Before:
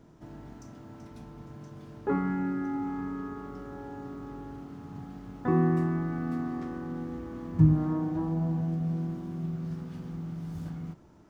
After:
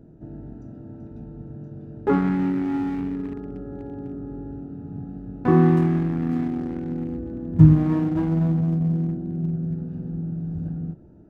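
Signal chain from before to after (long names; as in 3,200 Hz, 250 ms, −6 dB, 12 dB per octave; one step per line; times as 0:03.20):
adaptive Wiener filter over 41 samples
level +8.5 dB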